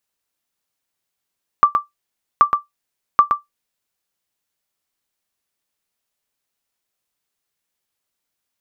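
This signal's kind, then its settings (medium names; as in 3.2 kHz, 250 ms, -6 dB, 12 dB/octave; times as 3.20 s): sonar ping 1.17 kHz, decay 0.15 s, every 0.78 s, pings 3, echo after 0.12 s, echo -6 dB -1.5 dBFS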